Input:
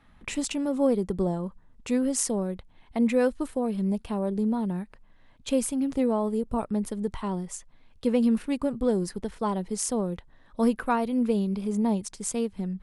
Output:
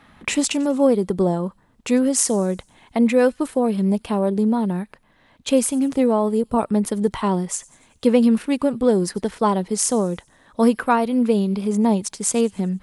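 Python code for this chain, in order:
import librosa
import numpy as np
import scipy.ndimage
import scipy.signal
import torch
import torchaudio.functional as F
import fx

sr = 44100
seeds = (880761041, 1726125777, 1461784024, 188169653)

p1 = fx.highpass(x, sr, hz=170.0, slope=6)
p2 = fx.rider(p1, sr, range_db=10, speed_s=0.5)
p3 = p1 + (p2 * 10.0 ** (0.5 / 20.0))
p4 = fx.echo_wet_highpass(p3, sr, ms=95, feedback_pct=52, hz=3300.0, wet_db=-21.5)
y = p4 * 10.0 ** (2.5 / 20.0)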